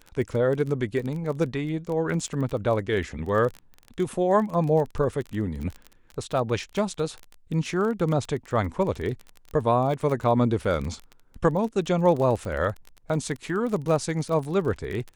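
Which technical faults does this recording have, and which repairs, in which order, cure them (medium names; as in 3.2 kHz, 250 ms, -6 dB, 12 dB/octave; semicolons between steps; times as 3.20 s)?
crackle 23 per s -30 dBFS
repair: de-click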